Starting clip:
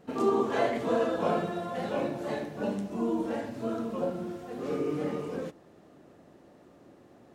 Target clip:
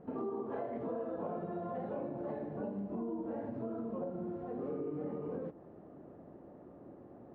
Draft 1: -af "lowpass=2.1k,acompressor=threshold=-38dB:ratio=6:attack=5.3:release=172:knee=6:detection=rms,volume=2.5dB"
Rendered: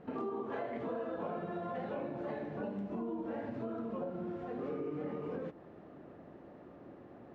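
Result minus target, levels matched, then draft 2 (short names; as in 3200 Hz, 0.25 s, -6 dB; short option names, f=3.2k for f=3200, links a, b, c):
2000 Hz band +8.0 dB
-af "lowpass=950,acompressor=threshold=-38dB:ratio=6:attack=5.3:release=172:knee=6:detection=rms,volume=2.5dB"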